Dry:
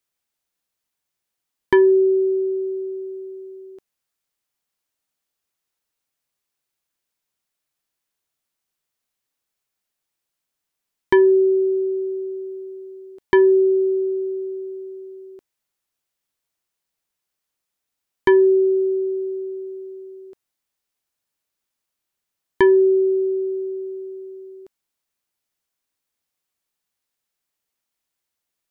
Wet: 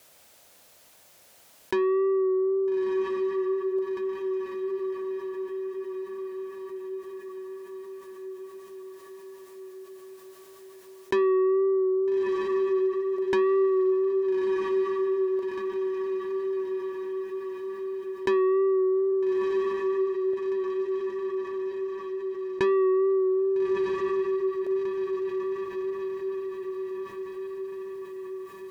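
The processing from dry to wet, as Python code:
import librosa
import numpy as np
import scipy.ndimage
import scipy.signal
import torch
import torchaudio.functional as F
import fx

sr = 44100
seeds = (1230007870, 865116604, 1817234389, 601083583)

y = scipy.signal.sosfilt(scipy.signal.butter(2, 51.0, 'highpass', fs=sr, output='sos'), x)
y = fx.peak_eq(y, sr, hz=590.0, db=9.0, octaves=0.72)
y = fx.wow_flutter(y, sr, seeds[0], rate_hz=2.1, depth_cents=25.0)
y = fx.bass_treble(y, sr, bass_db=8, treble_db=-11, at=(19.11, 22.63), fade=0.02)
y = 10.0 ** (-15.0 / 20.0) * np.tanh(y / 10.0 ** (-15.0 / 20.0))
y = fx.rider(y, sr, range_db=3, speed_s=2.0)
y = fx.echo_diffused(y, sr, ms=1292, feedback_pct=42, wet_db=-6.5)
y = fx.env_flatten(y, sr, amount_pct=50)
y = y * librosa.db_to_amplitude(-7.0)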